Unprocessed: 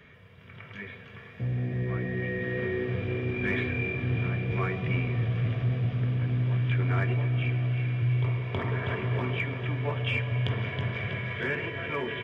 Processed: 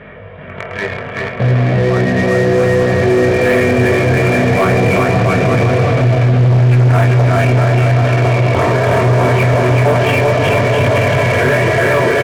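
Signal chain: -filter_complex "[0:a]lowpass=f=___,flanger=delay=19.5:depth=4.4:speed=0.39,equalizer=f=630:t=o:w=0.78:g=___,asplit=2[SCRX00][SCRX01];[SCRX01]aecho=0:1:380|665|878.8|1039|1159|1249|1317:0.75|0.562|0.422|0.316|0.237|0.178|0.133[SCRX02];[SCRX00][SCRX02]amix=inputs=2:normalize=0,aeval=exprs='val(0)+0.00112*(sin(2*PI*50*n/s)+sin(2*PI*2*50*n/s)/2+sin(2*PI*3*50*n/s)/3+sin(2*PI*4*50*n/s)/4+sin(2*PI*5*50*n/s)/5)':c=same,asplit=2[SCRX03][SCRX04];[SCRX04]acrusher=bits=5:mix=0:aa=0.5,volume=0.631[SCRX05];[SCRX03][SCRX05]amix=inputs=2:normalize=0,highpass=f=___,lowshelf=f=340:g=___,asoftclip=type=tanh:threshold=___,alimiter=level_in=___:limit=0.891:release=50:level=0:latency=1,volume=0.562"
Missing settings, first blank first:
2000, 10.5, 64, -4.5, 0.0891, 25.1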